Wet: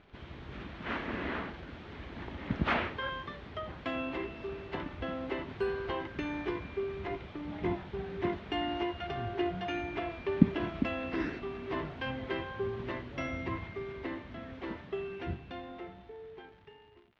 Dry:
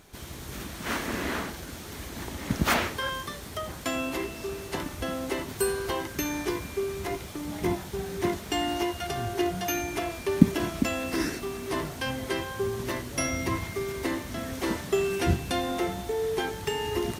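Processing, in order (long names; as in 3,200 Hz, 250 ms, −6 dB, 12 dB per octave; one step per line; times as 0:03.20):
fade-out on the ending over 4.75 s
surface crackle 130 per second −41 dBFS
low-pass filter 3,200 Hz 24 dB per octave
level −5 dB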